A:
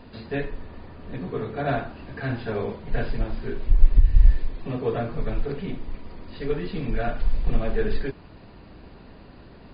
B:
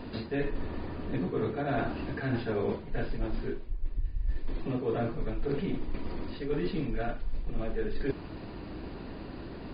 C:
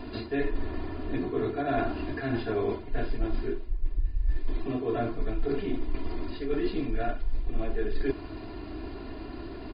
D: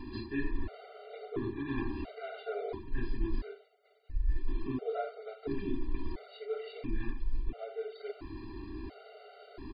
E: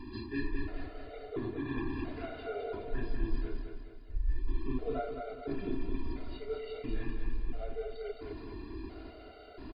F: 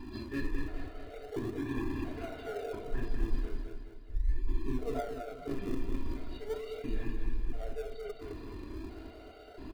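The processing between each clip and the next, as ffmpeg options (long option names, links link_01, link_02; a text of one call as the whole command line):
ffmpeg -i in.wav -af "equalizer=frequency=320:width_type=o:width=0.6:gain=6,areverse,acompressor=threshold=-30dB:ratio=12,areverse,volume=3.5dB" out.wav
ffmpeg -i in.wav -af "aecho=1:1:2.9:0.71" out.wav
ffmpeg -i in.wav -af "afftfilt=real='re*gt(sin(2*PI*0.73*pts/sr)*(1-2*mod(floor(b*sr/1024/390),2)),0)':imag='im*gt(sin(2*PI*0.73*pts/sr)*(1-2*mod(floor(b*sr/1024/390),2)),0)':win_size=1024:overlap=0.75,volume=-3.5dB" out.wav
ffmpeg -i in.wav -af "aecho=1:1:212|424|636|848|1060|1272:0.562|0.259|0.119|0.0547|0.0252|0.0116,volume=-1.5dB" out.wav
ffmpeg -i in.wav -filter_complex "[0:a]flanger=delay=4.5:depth=5.8:regen=-88:speed=0.29:shape=sinusoidal,asplit=2[link_01][link_02];[link_02]acrusher=samples=38:mix=1:aa=0.000001:lfo=1:lforange=38:lforate=0.39,volume=-11.5dB[link_03];[link_01][link_03]amix=inputs=2:normalize=0,volume=3.5dB" out.wav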